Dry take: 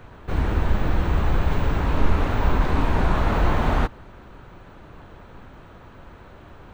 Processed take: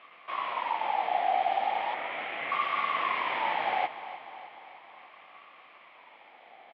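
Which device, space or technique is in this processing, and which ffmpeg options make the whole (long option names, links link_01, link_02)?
voice changer toy: -filter_complex "[0:a]asettb=1/sr,asplit=3[link_01][link_02][link_03];[link_01]atrim=end=1.944[link_04];[link_02]atrim=start=1.94:end=2.52,asetpts=PTS-STARTPTS,afade=type=in:duration=0.004:curve=qsin,afade=type=out:start_time=0.576:duration=0.004:curve=qsin,acrossover=split=200 2300:gain=0.158 1 0.251[link_05][link_06][link_07];[link_05][link_06][link_07]amix=inputs=3:normalize=0[link_08];[link_03]atrim=start=2.516[link_09];[link_04][link_08]acrossfade=duration=0.004:curve1=hsin:curve2=qsin[link_10];[link_10][link_09]acrossfade=duration=0.004:curve1=qsin:curve2=hsin,aeval=exprs='val(0)*sin(2*PI*950*n/s+950*0.2/0.37*sin(2*PI*0.37*n/s))':channel_layout=same,highpass=410,equalizer=frequency=410:width_type=q:width=4:gain=-5,equalizer=frequency=680:width_type=q:width=4:gain=3,equalizer=frequency=970:width_type=q:width=4:gain=-6,equalizer=frequency=1500:width_type=q:width=4:gain=-7,equalizer=frequency=2200:width_type=q:width=4:gain=7,equalizer=frequency=3200:width_type=q:width=4:gain=8,lowpass=frequency=3700:width=0.5412,lowpass=frequency=3700:width=1.3066,aecho=1:1:302|604|906|1208|1510|1812:0.2|0.118|0.0695|0.041|0.0242|0.0143,volume=-5.5dB"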